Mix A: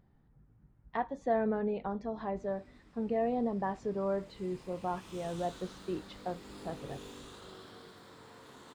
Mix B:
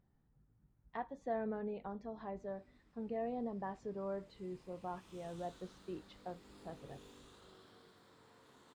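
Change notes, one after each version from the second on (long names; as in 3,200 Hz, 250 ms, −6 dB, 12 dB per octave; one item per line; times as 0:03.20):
speech −8.5 dB
background −10.5 dB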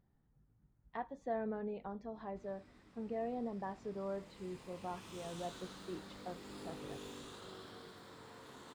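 background +9.5 dB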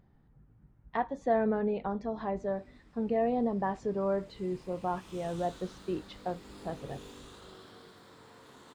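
speech +11.0 dB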